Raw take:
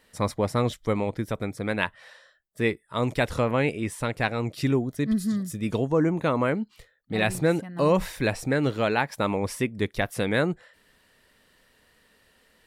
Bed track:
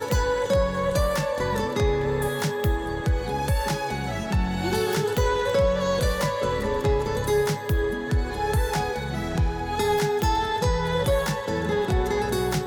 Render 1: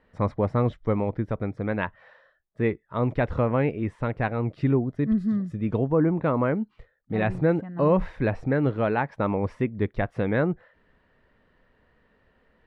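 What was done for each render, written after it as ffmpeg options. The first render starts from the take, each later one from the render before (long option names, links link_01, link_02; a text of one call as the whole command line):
ffmpeg -i in.wav -af "lowpass=1600,lowshelf=frequency=130:gain=5.5" out.wav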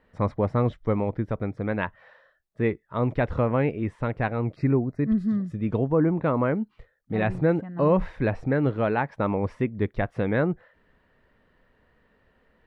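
ffmpeg -i in.wav -filter_complex "[0:a]asettb=1/sr,asplit=3[link_01][link_02][link_03];[link_01]atrim=end=4.564[link_04];[link_02]atrim=start=4.56:end=5.09,asetpts=PTS-STARTPTS,afade=type=in:duration=0.004:curve=qsin,afade=type=out:start_time=0.526:duration=0.004:curve=qsin,asuperstop=centerf=3200:order=12:qfactor=2.5[link_05];[link_03]atrim=start=5.086[link_06];[link_04][link_05]acrossfade=duration=0.004:curve1=hsin:curve2=qsin[link_07];[link_07][link_06]acrossfade=duration=0.004:curve1=qsin:curve2=hsin" out.wav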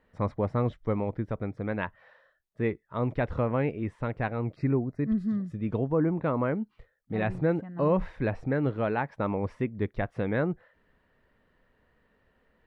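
ffmpeg -i in.wav -af "volume=-4dB" out.wav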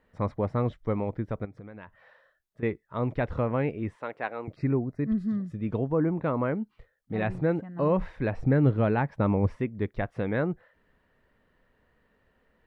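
ffmpeg -i in.wav -filter_complex "[0:a]asettb=1/sr,asplit=3[link_01][link_02][link_03];[link_01]atrim=end=1.454[link_04];[link_02]atrim=start=1.45:end=2.63,asetpts=PTS-STARTPTS,afade=type=in:duration=0.004:curve=qsin,afade=type=out:start_time=1.176:duration=0.004:curve=qsin,acompressor=threshold=-40dB:ratio=6:attack=3.2:release=140:knee=1:detection=peak[link_05];[link_03]atrim=start=2.626[link_06];[link_04][link_05]acrossfade=duration=0.004:curve1=hsin:curve2=qsin[link_07];[link_07][link_06]acrossfade=duration=0.004:curve1=qsin:curve2=hsin,asettb=1/sr,asplit=3[link_08][link_09][link_10];[link_08]atrim=end=3.974[link_11];[link_09]atrim=start=3.97:end=4.48,asetpts=PTS-STARTPTS,afade=type=in:duration=0.004:curve=qsin,afade=type=out:start_time=0.506:duration=0.004:curve=qsin,highpass=420[link_12];[link_10]atrim=start=4.476[link_13];[link_11][link_12]acrossfade=duration=0.004:curve1=hsin:curve2=qsin[link_14];[link_14][link_13]acrossfade=duration=0.004:curve1=qsin:curve2=hsin,asettb=1/sr,asplit=3[link_15][link_16][link_17];[link_15]atrim=end=8.374[link_18];[link_16]atrim=start=8.37:end=9.56,asetpts=PTS-STARTPTS,afade=type=in:duration=0.004:curve=qsin,afade=type=out:start_time=1.186:duration=0.004:curve=qsin,lowshelf=frequency=250:gain=10.5[link_19];[link_17]atrim=start=9.556[link_20];[link_18][link_19]acrossfade=duration=0.004:curve1=hsin:curve2=qsin[link_21];[link_21][link_20]acrossfade=duration=0.004:curve1=qsin:curve2=hsin" out.wav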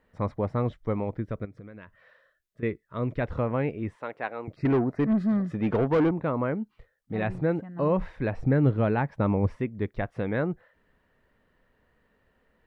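ffmpeg -i in.wav -filter_complex "[0:a]asettb=1/sr,asplit=3[link_01][link_02][link_03];[link_01]atrim=end=1.204[link_04];[link_02]atrim=start=1.2:end=3.22,asetpts=PTS-STARTPTS,afade=type=in:duration=0.004:curve=qsin,afade=type=out:start_time=2.016:duration=0.004:curve=qsin,equalizer=frequency=830:width_type=o:width=0.36:gain=-12[link_05];[link_03]atrim=start=3.216[link_06];[link_04][link_05]acrossfade=duration=0.004:curve1=hsin:curve2=qsin[link_07];[link_07][link_06]acrossfade=duration=0.004:curve1=qsin:curve2=hsin,asettb=1/sr,asplit=3[link_08][link_09][link_10];[link_08]atrim=end=4.654[link_11];[link_09]atrim=start=4.65:end=6.11,asetpts=PTS-STARTPTS,afade=type=in:duration=0.004:curve=qsin,afade=type=out:start_time=1.456:duration=0.004:curve=qsin,asplit=2[link_12][link_13];[link_13]highpass=frequency=720:poles=1,volume=23dB,asoftclip=type=tanh:threshold=-14.5dB[link_14];[link_12][link_14]amix=inputs=2:normalize=0,lowpass=frequency=1600:poles=1,volume=-6dB[link_15];[link_10]atrim=start=6.106[link_16];[link_11][link_15]acrossfade=duration=0.004:curve1=hsin:curve2=qsin[link_17];[link_17][link_16]acrossfade=duration=0.004:curve1=qsin:curve2=hsin" out.wav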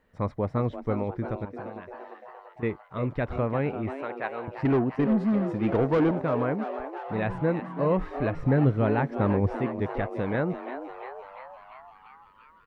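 ffmpeg -i in.wav -filter_complex "[0:a]asplit=9[link_01][link_02][link_03][link_04][link_05][link_06][link_07][link_08][link_09];[link_02]adelay=344,afreqshift=130,volume=-11dB[link_10];[link_03]adelay=688,afreqshift=260,volume=-14.7dB[link_11];[link_04]adelay=1032,afreqshift=390,volume=-18.5dB[link_12];[link_05]adelay=1376,afreqshift=520,volume=-22.2dB[link_13];[link_06]adelay=1720,afreqshift=650,volume=-26dB[link_14];[link_07]adelay=2064,afreqshift=780,volume=-29.7dB[link_15];[link_08]adelay=2408,afreqshift=910,volume=-33.5dB[link_16];[link_09]adelay=2752,afreqshift=1040,volume=-37.2dB[link_17];[link_01][link_10][link_11][link_12][link_13][link_14][link_15][link_16][link_17]amix=inputs=9:normalize=0" out.wav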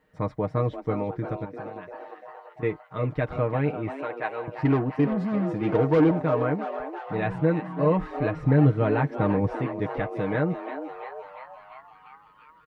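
ffmpeg -i in.wav -af "highpass=40,aecho=1:1:6.5:0.65" out.wav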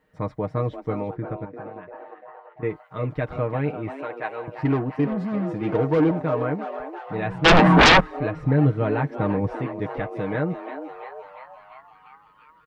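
ffmpeg -i in.wav -filter_complex "[0:a]asplit=3[link_01][link_02][link_03];[link_01]afade=type=out:start_time=1.15:duration=0.02[link_04];[link_02]lowpass=2300,afade=type=in:start_time=1.15:duration=0.02,afade=type=out:start_time=2.69:duration=0.02[link_05];[link_03]afade=type=in:start_time=2.69:duration=0.02[link_06];[link_04][link_05][link_06]amix=inputs=3:normalize=0,asplit=3[link_07][link_08][link_09];[link_07]afade=type=out:start_time=7.44:duration=0.02[link_10];[link_08]aeval=exprs='0.355*sin(PI/2*8.91*val(0)/0.355)':channel_layout=same,afade=type=in:start_time=7.44:duration=0.02,afade=type=out:start_time=7.99:duration=0.02[link_11];[link_09]afade=type=in:start_time=7.99:duration=0.02[link_12];[link_10][link_11][link_12]amix=inputs=3:normalize=0" out.wav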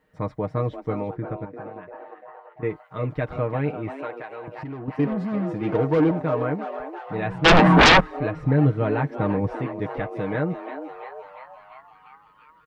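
ffmpeg -i in.wav -filter_complex "[0:a]asettb=1/sr,asplit=3[link_01][link_02][link_03];[link_01]atrim=end=4.104[link_04];[link_02]atrim=start=4.1:end=4.88,asetpts=PTS-STARTPTS,afade=type=in:duration=0.004:curve=qsin,afade=type=out:start_time=0.776:duration=0.004:curve=qsin,acompressor=threshold=-31dB:ratio=8:attack=3.2:release=140:knee=1:detection=peak[link_05];[link_03]atrim=start=4.876[link_06];[link_04][link_05]acrossfade=duration=0.004:curve1=hsin:curve2=qsin[link_07];[link_07][link_06]acrossfade=duration=0.004:curve1=qsin:curve2=hsin" out.wav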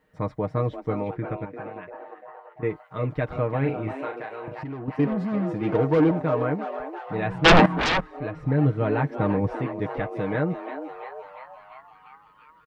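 ffmpeg -i in.wav -filter_complex "[0:a]asettb=1/sr,asplit=3[link_01][link_02][link_03];[link_01]atrim=end=1.064[link_04];[link_02]atrim=start=1.06:end=1.9,asetpts=PTS-STARTPTS,afade=type=in:duration=0.004:curve=qsin,afade=type=out:start_time=0.836:duration=0.004:curve=qsin,equalizer=frequency=2500:width_type=o:width=1.1:gain=8[link_05];[link_03]atrim=start=1.896[link_06];[link_04][link_05]acrossfade=duration=0.004:curve1=hsin:curve2=qsin[link_07];[link_07][link_06]acrossfade=duration=0.004:curve1=qsin:curve2=hsin,asplit=3[link_08][link_09][link_10];[link_08]afade=type=out:start_time=3.61:duration=0.02[link_11];[link_09]asplit=2[link_12][link_13];[link_13]adelay=37,volume=-5.5dB[link_14];[link_12][link_14]amix=inputs=2:normalize=0,afade=type=in:start_time=3.61:duration=0.02,afade=type=out:start_time=4.54:duration=0.02[link_15];[link_10]afade=type=in:start_time=4.54:duration=0.02[link_16];[link_11][link_15][link_16]amix=inputs=3:normalize=0,asplit=2[link_17][link_18];[link_17]atrim=end=7.66,asetpts=PTS-STARTPTS,afade=type=out:start_time=7.656:duration=0.004:curve=hsin:silence=0.158489[link_19];[link_18]atrim=start=7.66,asetpts=PTS-STARTPTS,afade=type=in:duration=1.36:silence=0.158489[link_20];[link_19][link_20]concat=n=2:v=0:a=1" out.wav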